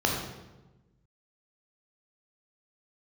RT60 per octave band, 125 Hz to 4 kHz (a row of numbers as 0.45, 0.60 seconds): 1.7, 1.5, 1.2, 1.0, 0.85, 0.80 seconds